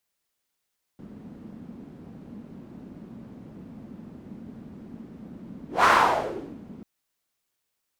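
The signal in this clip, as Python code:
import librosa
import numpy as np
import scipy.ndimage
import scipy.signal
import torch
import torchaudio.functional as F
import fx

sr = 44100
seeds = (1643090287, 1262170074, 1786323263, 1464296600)

y = fx.whoosh(sr, seeds[0], length_s=5.84, peak_s=4.86, rise_s=0.17, fall_s=0.82, ends_hz=220.0, peak_hz=1200.0, q=3.2, swell_db=26.5)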